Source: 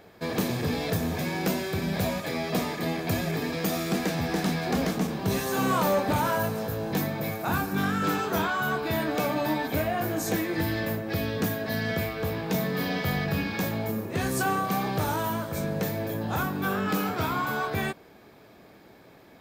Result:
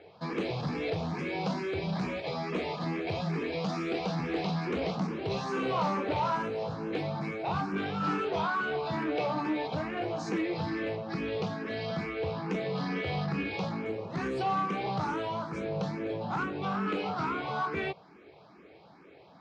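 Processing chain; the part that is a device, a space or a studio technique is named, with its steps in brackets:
barber-pole phaser into a guitar amplifier (frequency shifter mixed with the dry sound +2.3 Hz; soft clipping −24.5 dBFS, distortion −17 dB; loudspeaker in its box 97–4,400 Hz, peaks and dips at 110 Hz −8 dB, 240 Hz −8 dB, 620 Hz −3 dB, 1,700 Hz −8 dB, 3,500 Hz −5 dB)
level +3 dB

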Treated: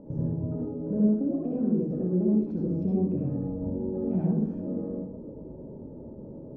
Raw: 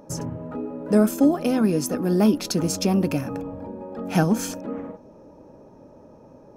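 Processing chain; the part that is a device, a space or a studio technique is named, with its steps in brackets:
television next door (downward compressor 3 to 1, threshold −35 dBFS, peak gain reduction 16.5 dB; low-pass filter 350 Hz 12 dB per octave; convolution reverb RT60 0.65 s, pre-delay 57 ms, DRR −4.5 dB)
parametric band 1,300 Hz −2.5 dB 0.42 octaves
level +3.5 dB

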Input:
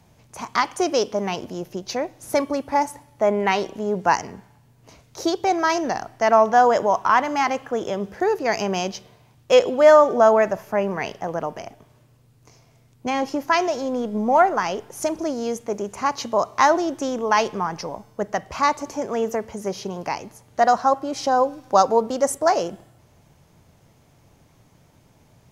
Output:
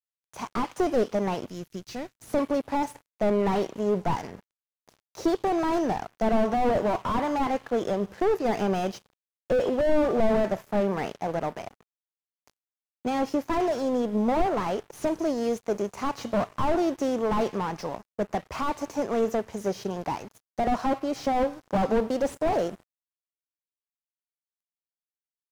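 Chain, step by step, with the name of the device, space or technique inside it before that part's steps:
early transistor amplifier (dead-zone distortion −43.5 dBFS; slew-rate limiting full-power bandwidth 49 Hz)
0:01.48–0:02.19: parametric band 640 Hz −11.5 dB 2.2 octaves

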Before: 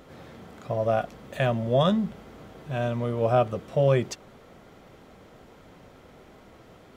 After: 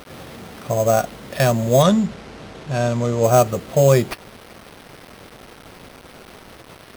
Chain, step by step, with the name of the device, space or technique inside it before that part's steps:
early 8-bit sampler (sample-rate reduction 7,100 Hz, jitter 0%; bit reduction 8 bits)
0:01.82–0:03.24: low-pass filter 6,900 Hz 12 dB per octave
level +7.5 dB

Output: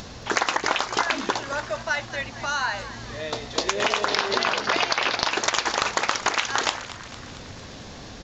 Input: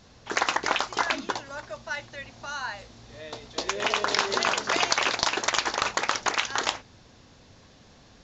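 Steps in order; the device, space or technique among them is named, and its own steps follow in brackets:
upward and downward compression (upward compression, threshold −42 dBFS; downward compressor 3 to 1, threshold −30 dBFS, peak gain reduction 9.5 dB)
0:04.08–0:05.31: low-pass filter 5,500 Hz 24 dB per octave
echo with shifted repeats 226 ms, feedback 60%, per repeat +100 Hz, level −14.5 dB
level +9 dB

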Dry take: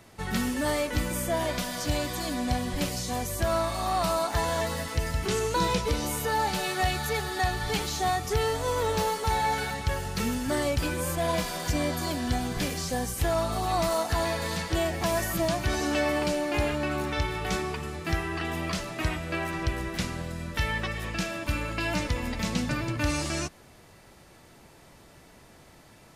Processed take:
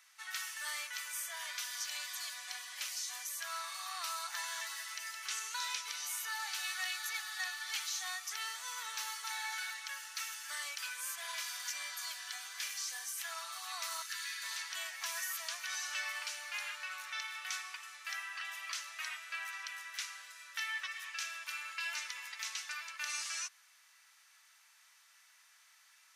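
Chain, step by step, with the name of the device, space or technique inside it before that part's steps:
headphones lying on a table (high-pass filter 1,300 Hz 24 dB per octave; parametric band 6,000 Hz +6 dB 0.21 octaves)
0:14.02–0:14.43: inverse Chebyshev high-pass filter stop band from 310 Hz, stop band 70 dB
level −6 dB

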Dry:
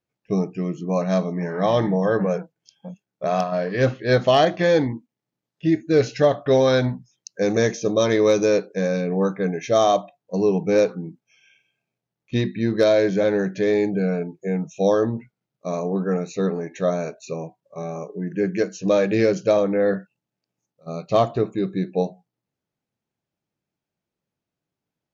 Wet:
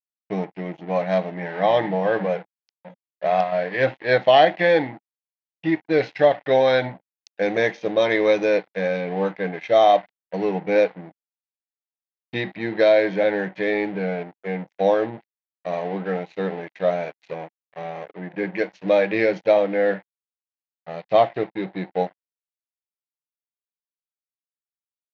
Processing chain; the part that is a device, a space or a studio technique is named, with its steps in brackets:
blown loudspeaker (dead-zone distortion −38.5 dBFS; loudspeaker in its box 230–3,800 Hz, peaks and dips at 240 Hz −9 dB, 400 Hz −7 dB, 800 Hz +5 dB, 1,200 Hz −8 dB, 2,000 Hz +7 dB)
level +2.5 dB

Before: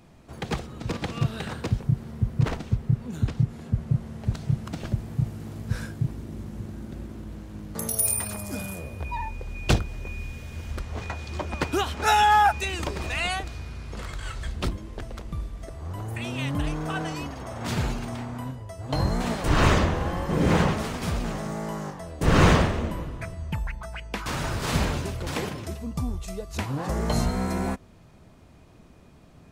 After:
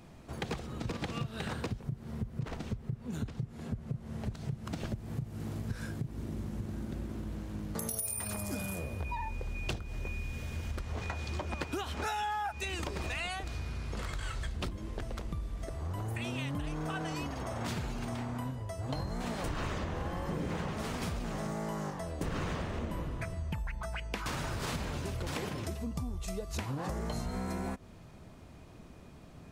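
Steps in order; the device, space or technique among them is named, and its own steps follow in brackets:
serial compression, peaks first (downward compressor 4 to 1, threshold −29 dBFS, peak gain reduction 14 dB; downward compressor 2.5 to 1, threshold −34 dBFS, peak gain reduction 6.5 dB)

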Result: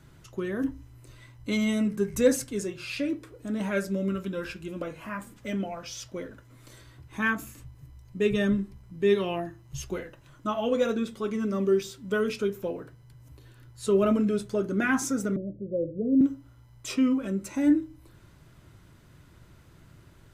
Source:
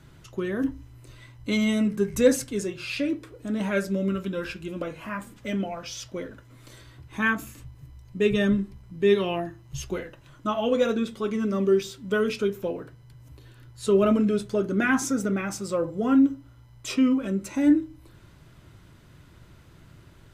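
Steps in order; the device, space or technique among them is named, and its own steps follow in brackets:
exciter from parts (in parallel at −10.5 dB: high-pass filter 2,400 Hz + soft clipping −25 dBFS, distortion −19 dB + high-pass filter 3,200 Hz 12 dB per octave)
0:15.36–0:16.21: on the sum: Butterworth low-pass 610 Hz 96 dB per octave
level −2.5 dB

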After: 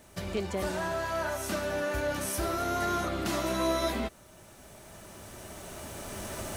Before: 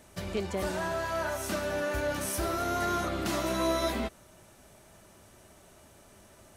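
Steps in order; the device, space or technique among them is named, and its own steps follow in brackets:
cheap recorder with automatic gain (white noise bed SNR 39 dB; camcorder AGC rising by 7.8 dB per second)

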